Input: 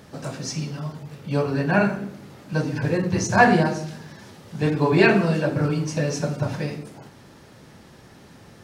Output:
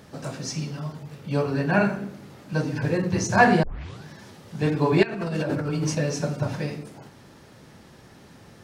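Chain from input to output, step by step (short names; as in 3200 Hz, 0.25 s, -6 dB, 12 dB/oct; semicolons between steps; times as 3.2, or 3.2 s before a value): 3.63 tape start 0.43 s; 5.03–5.95 negative-ratio compressor -26 dBFS, ratio -1; gain -1.5 dB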